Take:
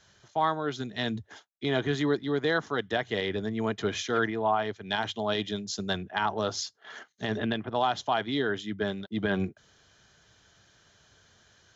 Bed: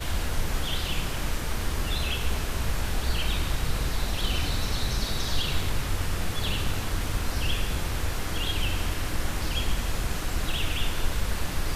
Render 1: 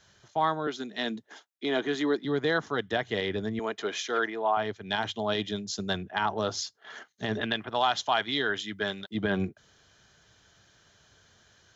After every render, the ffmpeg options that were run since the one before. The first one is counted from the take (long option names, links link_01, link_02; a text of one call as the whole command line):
ffmpeg -i in.wav -filter_complex "[0:a]asettb=1/sr,asplit=3[link_01][link_02][link_03];[link_01]atrim=end=0.674[link_04];[link_02]atrim=start=0.67:end=2.25,asetpts=PTS-STARTPTS,afade=type=in:duration=0.004:curve=qsin,afade=type=out:start_time=1.576:duration=0.004:curve=qsin,highpass=frequency=210:width=0.5412,highpass=frequency=210:width=1.3066[link_05];[link_03]atrim=start=2.246[link_06];[link_04][link_05]acrossfade=duration=0.004:curve1=hsin:curve2=qsin[link_07];[link_07][link_06]acrossfade=duration=0.004:curve1=qsin:curve2=hsin,asettb=1/sr,asplit=3[link_08][link_09][link_10];[link_08]atrim=end=3.594[link_11];[link_09]atrim=start=3.59:end=4.57,asetpts=PTS-STARTPTS,afade=type=in:duration=0.004:curve=qsin,afade=type=out:start_time=0.976:duration=0.004:curve=qsin,highpass=370[link_12];[link_10]atrim=start=4.566[link_13];[link_11][link_12]acrossfade=duration=0.004:curve1=hsin:curve2=qsin[link_14];[link_14][link_13]acrossfade=duration=0.004:curve1=qsin:curve2=hsin,asettb=1/sr,asplit=3[link_15][link_16][link_17];[link_15]atrim=end=7.414[link_18];[link_16]atrim=start=7.41:end=9.15,asetpts=PTS-STARTPTS,afade=type=in:duration=0.004:curve=qsin,afade=type=out:start_time=1.736:duration=0.004:curve=qsin,tiltshelf=frequency=720:gain=-6[link_19];[link_17]atrim=start=9.146[link_20];[link_18][link_19]acrossfade=duration=0.004:curve1=hsin:curve2=qsin[link_21];[link_21][link_20]acrossfade=duration=0.004:curve1=qsin:curve2=hsin" out.wav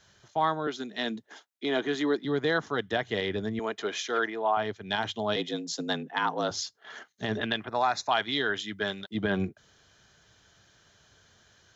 ffmpeg -i in.wav -filter_complex "[0:a]asettb=1/sr,asplit=3[link_01][link_02][link_03];[link_01]atrim=end=5.364[link_04];[link_02]atrim=start=5.36:end=6.51,asetpts=PTS-STARTPTS,afade=type=in:duration=0.004:curve=qsin,afade=type=out:start_time=1.146:duration=0.004:curve=qsin,afreqshift=66[link_05];[link_03]atrim=start=6.506[link_06];[link_04][link_05]acrossfade=duration=0.004:curve1=hsin:curve2=qsin[link_07];[link_07][link_06]acrossfade=duration=0.004:curve1=qsin:curve2=hsin,asettb=1/sr,asplit=3[link_08][link_09][link_10];[link_08]atrim=end=7.684[link_11];[link_09]atrim=start=7.68:end=8.11,asetpts=PTS-STARTPTS,afade=type=in:duration=0.004:curve=qsin,afade=type=out:start_time=0.426:duration=0.004:curve=qsin,asuperstop=centerf=3100:order=4:qfactor=2.4[link_12];[link_10]atrim=start=8.106[link_13];[link_11][link_12]acrossfade=duration=0.004:curve1=hsin:curve2=qsin[link_14];[link_14][link_13]acrossfade=duration=0.004:curve1=qsin:curve2=hsin" out.wav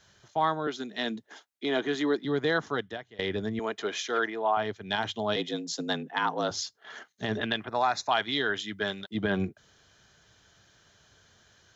ffmpeg -i in.wav -filter_complex "[0:a]asplit=2[link_01][link_02];[link_01]atrim=end=3.19,asetpts=PTS-STARTPTS,afade=type=out:start_time=2.75:duration=0.44:curve=qua:silence=0.0794328[link_03];[link_02]atrim=start=3.19,asetpts=PTS-STARTPTS,afade=type=in:duration=0.004:curve=hsin:silence=0.0794328[link_04];[link_03][link_04]concat=n=2:v=0:a=1" out.wav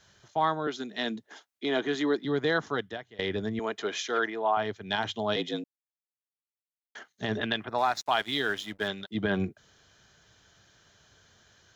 ffmpeg -i in.wav -filter_complex "[0:a]asettb=1/sr,asplit=3[link_01][link_02][link_03];[link_01]atrim=end=7.784[link_04];[link_02]atrim=start=7.78:end=8.88,asetpts=PTS-STARTPTS,afade=type=in:duration=0.004:curve=qsin,afade=type=out:start_time=1.096:duration=0.004:curve=qsin,aeval=exprs='sgn(val(0))*max(abs(val(0))-0.00447,0)':channel_layout=same[link_05];[link_03]atrim=start=8.876[link_06];[link_04][link_05]acrossfade=duration=0.004:curve1=hsin:curve2=qsin[link_07];[link_07][link_06]acrossfade=duration=0.004:curve1=qsin:curve2=hsin,asplit=3[link_08][link_09][link_10];[link_08]atrim=end=5.64,asetpts=PTS-STARTPTS,afade=type=out:start_time=5.636:duration=0.004:curve=hsin[link_11];[link_09]atrim=start=5.64:end=6.95,asetpts=PTS-STARTPTS,volume=0[link_12];[link_10]atrim=start=6.95,asetpts=PTS-STARTPTS,afade=type=in:duration=0.004:curve=hsin[link_13];[link_11][link_12][link_13]concat=n=3:v=0:a=1" out.wav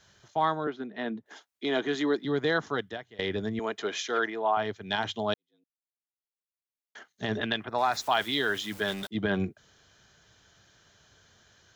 ffmpeg -i in.wav -filter_complex "[0:a]asettb=1/sr,asplit=3[link_01][link_02][link_03];[link_01]atrim=end=0.644[link_04];[link_02]atrim=start=0.64:end=1.26,asetpts=PTS-STARTPTS,afade=type=in:duration=0.004:curve=qsin,afade=type=out:start_time=0.616:duration=0.004:curve=qsin,lowpass=1800[link_05];[link_03]atrim=start=1.256[link_06];[link_04][link_05]acrossfade=duration=0.004:curve1=hsin:curve2=qsin[link_07];[link_07][link_06]acrossfade=duration=0.004:curve1=qsin:curve2=hsin,asettb=1/sr,asplit=3[link_08][link_09][link_10];[link_08]atrim=end=7.924[link_11];[link_09]atrim=start=7.92:end=9.07,asetpts=PTS-STARTPTS,afade=type=in:duration=0.004:curve=qsin,afade=type=out:start_time=1.146:duration=0.004:curve=qsin,aeval=exprs='val(0)+0.5*0.015*sgn(val(0))':channel_layout=same[link_12];[link_10]atrim=start=9.066[link_13];[link_11][link_12]acrossfade=duration=0.004:curve1=hsin:curve2=qsin[link_14];[link_14][link_13]acrossfade=duration=0.004:curve1=qsin:curve2=hsin,asplit=2[link_15][link_16];[link_15]atrim=end=5.34,asetpts=PTS-STARTPTS,afade=type=out:start_time=5.336:duration=0.004:curve=hsin[link_17];[link_16]atrim=start=5.34,asetpts=PTS-STARTPTS,afade=type=in:duration=1.9:curve=qua[link_18];[link_17][link_18]concat=n=2:v=0:a=1" out.wav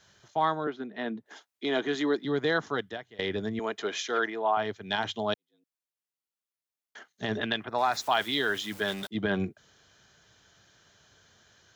ffmpeg -i in.wav -af "lowshelf=frequency=65:gain=-7" out.wav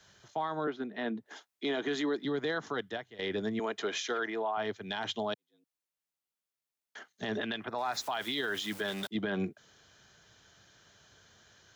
ffmpeg -i in.wav -filter_complex "[0:a]acrossover=split=130|970|5700[link_01][link_02][link_03][link_04];[link_01]acompressor=threshold=-57dB:ratio=6[link_05];[link_05][link_02][link_03][link_04]amix=inputs=4:normalize=0,alimiter=limit=-24dB:level=0:latency=1:release=74" out.wav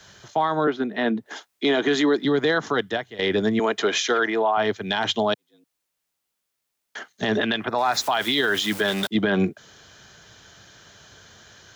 ffmpeg -i in.wav -af "volume=12dB" out.wav